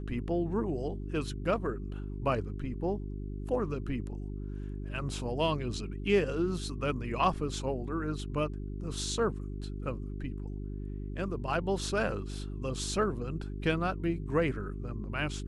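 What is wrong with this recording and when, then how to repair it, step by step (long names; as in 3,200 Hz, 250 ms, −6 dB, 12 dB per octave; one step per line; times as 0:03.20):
mains hum 50 Hz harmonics 8 −38 dBFS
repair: hum removal 50 Hz, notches 8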